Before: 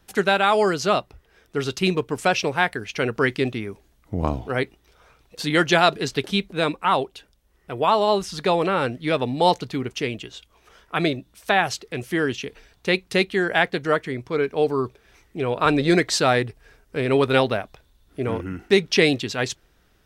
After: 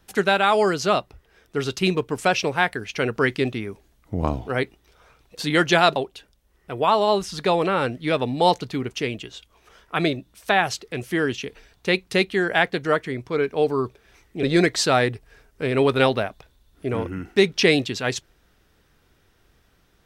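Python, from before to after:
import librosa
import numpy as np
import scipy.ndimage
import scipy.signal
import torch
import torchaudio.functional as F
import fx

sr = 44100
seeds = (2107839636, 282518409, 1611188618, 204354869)

y = fx.edit(x, sr, fx.cut(start_s=5.96, length_s=1.0),
    fx.cut(start_s=15.43, length_s=0.34), tone=tone)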